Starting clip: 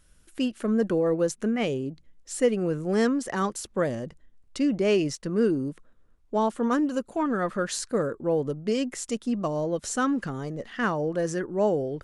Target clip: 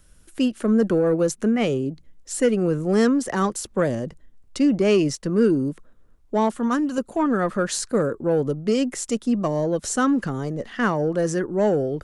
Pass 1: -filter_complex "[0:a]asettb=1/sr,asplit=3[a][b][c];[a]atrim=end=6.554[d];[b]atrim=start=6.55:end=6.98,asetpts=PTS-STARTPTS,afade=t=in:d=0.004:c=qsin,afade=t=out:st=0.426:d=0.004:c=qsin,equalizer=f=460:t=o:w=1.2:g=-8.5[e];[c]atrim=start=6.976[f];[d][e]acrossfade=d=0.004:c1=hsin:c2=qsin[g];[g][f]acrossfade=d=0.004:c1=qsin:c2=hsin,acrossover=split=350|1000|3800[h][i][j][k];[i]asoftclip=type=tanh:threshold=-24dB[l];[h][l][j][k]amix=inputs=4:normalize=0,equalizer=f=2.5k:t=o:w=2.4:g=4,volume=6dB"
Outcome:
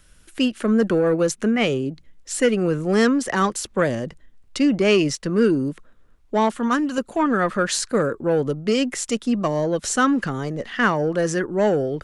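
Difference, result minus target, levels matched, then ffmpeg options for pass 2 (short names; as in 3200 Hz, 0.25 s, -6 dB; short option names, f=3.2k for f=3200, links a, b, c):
2000 Hz band +4.5 dB
-filter_complex "[0:a]asettb=1/sr,asplit=3[a][b][c];[a]atrim=end=6.554[d];[b]atrim=start=6.55:end=6.98,asetpts=PTS-STARTPTS,afade=t=in:d=0.004:c=qsin,afade=t=out:st=0.426:d=0.004:c=qsin,equalizer=f=460:t=o:w=1.2:g=-8.5[e];[c]atrim=start=6.976[f];[d][e]acrossfade=d=0.004:c1=hsin:c2=qsin[g];[g][f]acrossfade=d=0.004:c1=qsin:c2=hsin,acrossover=split=350|1000|3800[h][i][j][k];[i]asoftclip=type=tanh:threshold=-24dB[l];[h][l][j][k]amix=inputs=4:normalize=0,equalizer=f=2.5k:t=o:w=2.4:g=-3,volume=6dB"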